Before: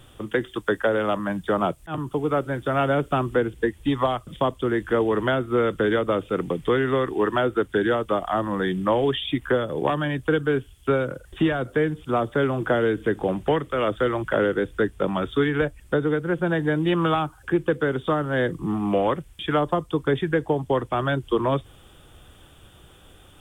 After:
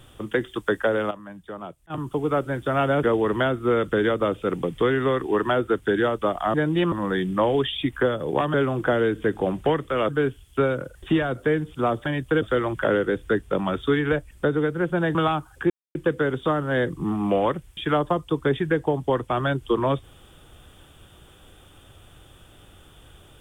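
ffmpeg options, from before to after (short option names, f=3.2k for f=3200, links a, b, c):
-filter_complex "[0:a]asplit=12[a][b][c][d][e][f][g][h][i][j][k][l];[a]atrim=end=1.11,asetpts=PTS-STARTPTS,afade=t=out:st=0.64:d=0.47:c=log:silence=0.211349[m];[b]atrim=start=1.11:end=1.9,asetpts=PTS-STARTPTS,volume=-13.5dB[n];[c]atrim=start=1.9:end=3.032,asetpts=PTS-STARTPTS,afade=t=in:d=0.47:c=log:silence=0.211349[o];[d]atrim=start=4.898:end=8.412[p];[e]atrim=start=16.638:end=17.022[q];[f]atrim=start=8.408:end=10.032[r];[g]atrim=start=12.358:end=13.912[s];[h]atrim=start=10.388:end=12.362[t];[i]atrim=start=10.028:end=10.392[u];[j]atrim=start=13.908:end=16.642[v];[k]atrim=start=17.018:end=17.57,asetpts=PTS-STARTPTS,afade=t=out:st=0.548:d=0.004:c=hsin,apad=pad_dur=0.25[w];[l]atrim=start=17.57,asetpts=PTS-STARTPTS,afade=t=in:d=0.004:c=hsin[x];[m][n][o]concat=n=3:v=0:a=1[y];[y][p]acrossfade=d=0.004:c1=hsin:c2=hsin[z];[z][q]acrossfade=d=0.004:c1=hsin:c2=hsin[aa];[aa][r]acrossfade=d=0.004:c1=hsin:c2=hsin[ab];[ab][s]acrossfade=d=0.004:c1=hsin:c2=hsin[ac];[ac][t]acrossfade=d=0.004:c1=hsin:c2=hsin[ad];[ad][u]acrossfade=d=0.004:c1=hsin:c2=hsin[ae];[ae][v]acrossfade=d=0.004:c1=hsin:c2=hsin[af];[w][x]concat=n=2:v=0:a=1[ag];[af][ag]acrossfade=d=0.004:c1=hsin:c2=hsin"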